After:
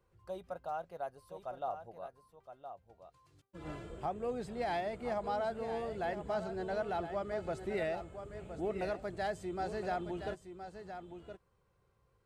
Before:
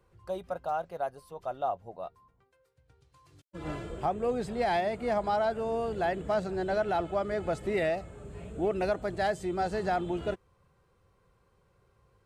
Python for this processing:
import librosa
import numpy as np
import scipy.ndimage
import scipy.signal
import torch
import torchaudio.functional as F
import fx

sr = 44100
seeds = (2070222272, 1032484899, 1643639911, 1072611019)

y = x + 10.0 ** (-9.5 / 20.0) * np.pad(x, (int(1017 * sr / 1000.0), 0))[:len(x)]
y = F.gain(torch.from_numpy(y), -7.5).numpy()